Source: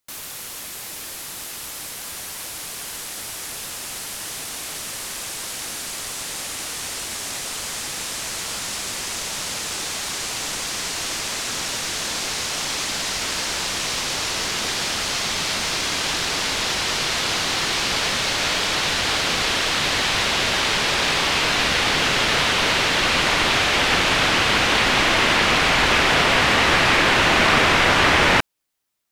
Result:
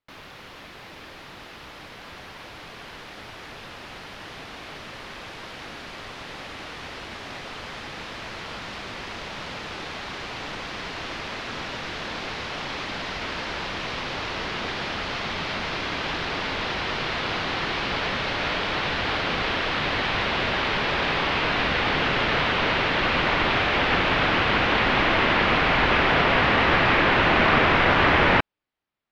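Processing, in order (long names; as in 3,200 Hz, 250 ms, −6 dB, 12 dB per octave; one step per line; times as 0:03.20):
high-frequency loss of the air 320 metres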